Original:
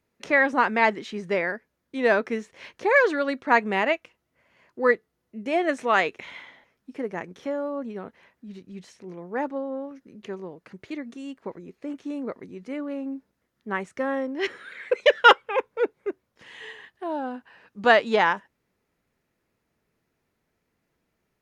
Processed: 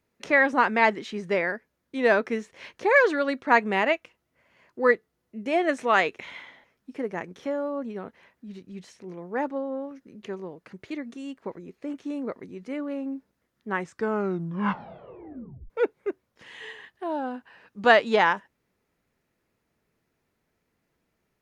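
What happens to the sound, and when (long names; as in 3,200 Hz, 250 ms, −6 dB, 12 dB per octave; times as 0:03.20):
0:13.71: tape stop 1.99 s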